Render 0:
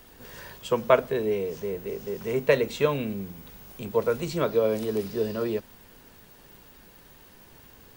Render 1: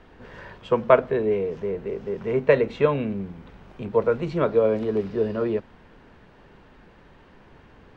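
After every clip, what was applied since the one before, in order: LPF 2200 Hz 12 dB/oct; gain +3.5 dB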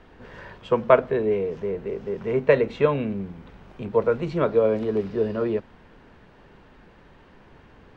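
nothing audible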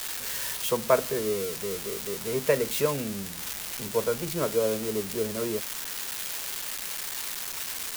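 switching spikes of -13.5 dBFS; gain -6 dB

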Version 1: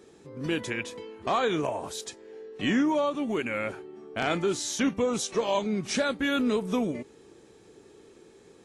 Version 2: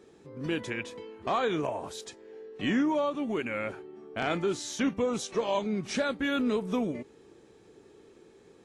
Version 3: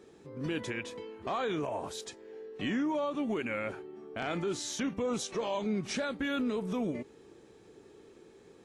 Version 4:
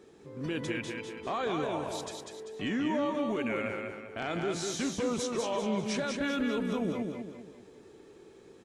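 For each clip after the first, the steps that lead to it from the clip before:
high shelf 5500 Hz -7 dB; gain -2 dB
limiter -25 dBFS, peak gain reduction 6.5 dB
feedback echo 0.196 s, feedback 42%, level -4 dB

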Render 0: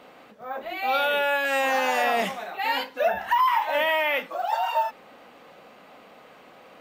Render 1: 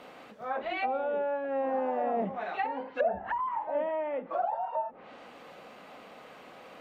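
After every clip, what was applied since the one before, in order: treble ducked by the level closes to 530 Hz, closed at -23 dBFS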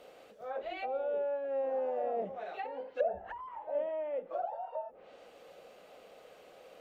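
ten-band EQ 125 Hz -8 dB, 250 Hz -12 dB, 500 Hz +5 dB, 1000 Hz -11 dB, 2000 Hz -7 dB, 4000 Hz -3 dB; gain -1 dB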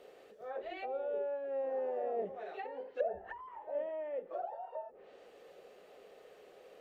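small resonant body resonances 400/1800 Hz, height 11 dB, ringing for 45 ms; gain -4.5 dB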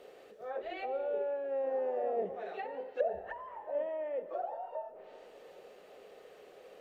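digital reverb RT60 2.5 s, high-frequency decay 0.75×, pre-delay 25 ms, DRR 14.5 dB; gain +2.5 dB

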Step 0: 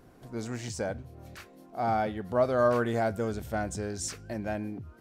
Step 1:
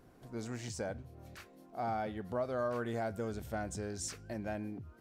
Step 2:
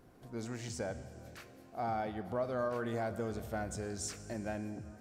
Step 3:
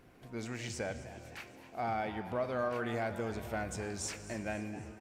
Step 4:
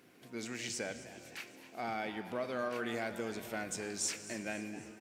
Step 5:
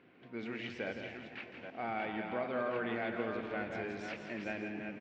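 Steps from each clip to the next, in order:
compressor 2.5:1, threshold -29 dBFS, peak gain reduction 7 dB; gain -5 dB
reverb RT60 3.1 s, pre-delay 32 ms, DRR 12 dB
bell 2400 Hz +9 dB 1 oct; frequency-shifting echo 0.258 s, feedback 54%, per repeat +120 Hz, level -15.5 dB
HPF 260 Hz 12 dB/oct; bell 800 Hz -9.5 dB 2.2 oct; gain +5 dB
reverse delay 0.426 s, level -6 dB; LPF 3100 Hz 24 dB/oct; echo 0.167 s -8 dB

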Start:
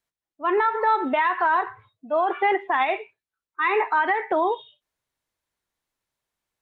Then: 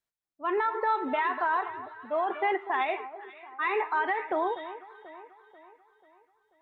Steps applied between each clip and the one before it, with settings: echo with dull and thin repeats by turns 0.244 s, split 1400 Hz, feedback 67%, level -12.5 dB; gain -6.5 dB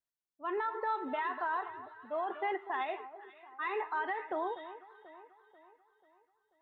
notch 2300 Hz, Q 7.4; gain -7 dB

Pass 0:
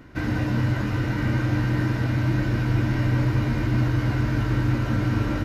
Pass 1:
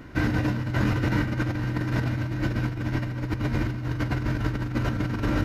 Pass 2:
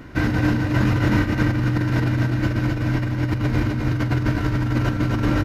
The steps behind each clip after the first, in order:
negative-ratio compressor -25 dBFS, ratio -0.5
echo 0.26 s -3.5 dB; gain +3.5 dB

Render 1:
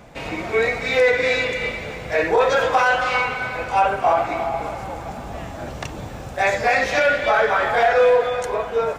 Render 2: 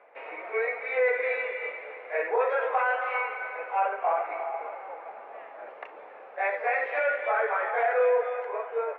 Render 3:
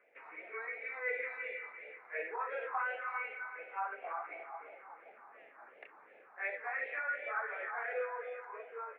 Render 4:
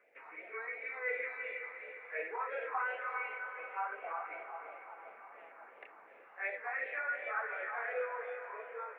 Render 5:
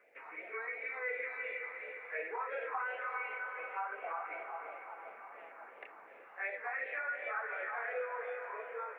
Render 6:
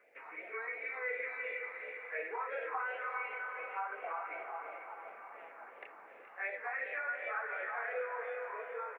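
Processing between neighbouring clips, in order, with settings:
elliptic band-pass 450–2300 Hz, stop band 80 dB; gain -8 dB
phaser stages 4, 2.8 Hz, lowest notch 500–1100 Hz; gain -7 dB
diffused feedback echo 0.489 s, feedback 57%, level -12 dB
compressor 2:1, threshold -40 dBFS, peak gain reduction 5 dB; gain +2.5 dB
echo 0.423 s -13 dB

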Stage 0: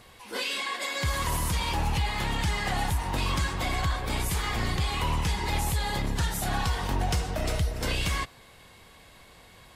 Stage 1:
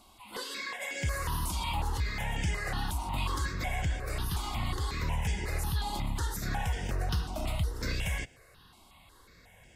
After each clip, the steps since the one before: step phaser 5.5 Hz 480–4100 Hz; gain -2.5 dB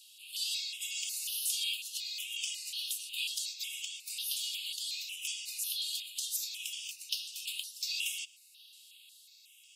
steep high-pass 2600 Hz 96 dB/oct; gain +6.5 dB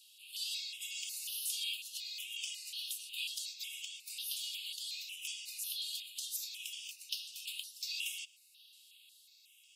bell 7300 Hz -2.5 dB 0.89 oct; gain -3.5 dB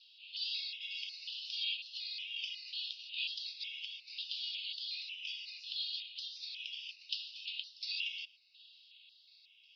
steep low-pass 5100 Hz 72 dB/oct; gain +2 dB

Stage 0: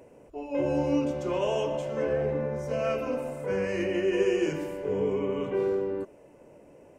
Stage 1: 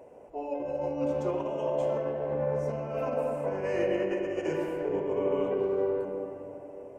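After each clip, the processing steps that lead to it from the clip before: bell 710 Hz +11 dB 1.5 oct; negative-ratio compressor -23 dBFS, ratio -0.5; on a send at -2.5 dB: reverb RT60 2.8 s, pre-delay 57 ms; on the sum: gain -8 dB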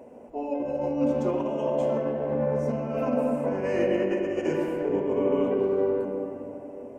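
bell 240 Hz +14.5 dB 0.36 oct; gain +2.5 dB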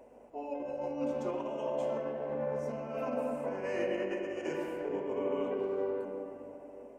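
hum 50 Hz, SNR 33 dB; low shelf 370 Hz -10.5 dB; ending taper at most 140 dB/s; gain -4.5 dB

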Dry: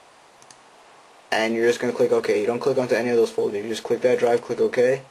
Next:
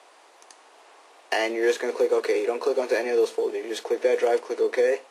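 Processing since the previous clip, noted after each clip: steep high-pass 300 Hz 36 dB/oct; gain -2.5 dB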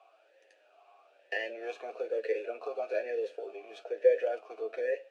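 bell 830 Hz -4.5 dB 2.3 oct; flange 0.41 Hz, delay 8.9 ms, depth 1.4 ms, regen +34%; vowel sweep a-e 1.1 Hz; gain +6.5 dB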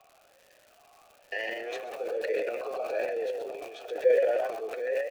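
frequency-shifting echo 0.129 s, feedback 31%, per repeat +44 Hz, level -6 dB; crackle 260/s -46 dBFS; transient shaper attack -1 dB, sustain +11 dB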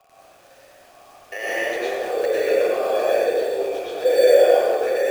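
in parallel at -8 dB: sample-and-hold 11×; on the sum: plate-style reverb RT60 1.4 s, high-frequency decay 0.7×, pre-delay 85 ms, DRR -8 dB

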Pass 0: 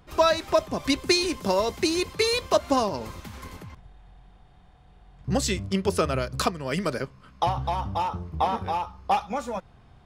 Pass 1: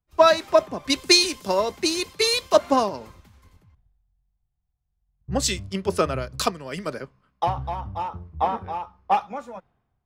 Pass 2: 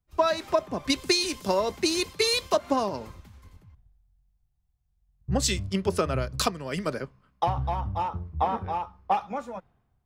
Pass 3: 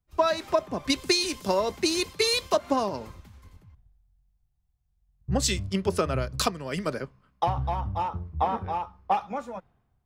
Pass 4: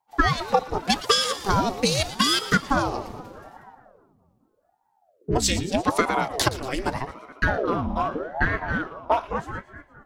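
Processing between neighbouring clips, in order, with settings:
low shelf 130 Hz -6 dB; three-band expander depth 100%
low shelf 190 Hz +4.5 dB; compressor 6:1, threshold -20 dBFS, peak gain reduction 10.5 dB
nothing audible
split-band echo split 1400 Hz, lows 0.211 s, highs 0.116 s, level -14.5 dB; ring modulator with a swept carrier 500 Hz, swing 75%, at 0.82 Hz; gain +6 dB

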